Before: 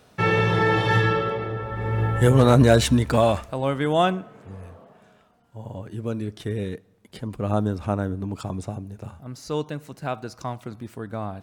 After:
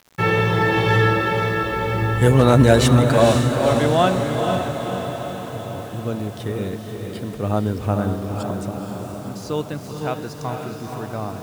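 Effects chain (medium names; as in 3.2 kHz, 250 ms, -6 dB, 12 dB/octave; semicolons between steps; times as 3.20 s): echo that smears into a reverb 491 ms, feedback 61%, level -4.5 dB; bit crusher 8-bit; trim +2 dB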